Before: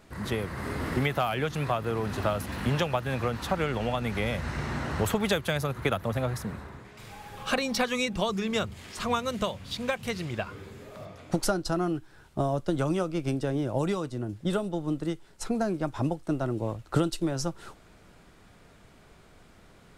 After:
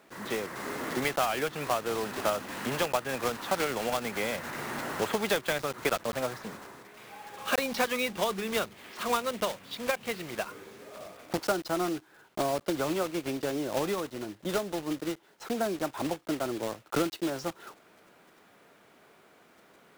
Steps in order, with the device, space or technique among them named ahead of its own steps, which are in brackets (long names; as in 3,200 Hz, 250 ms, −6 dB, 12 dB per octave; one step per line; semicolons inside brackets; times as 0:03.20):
early digital voice recorder (band-pass filter 290–3,400 Hz; one scale factor per block 3 bits)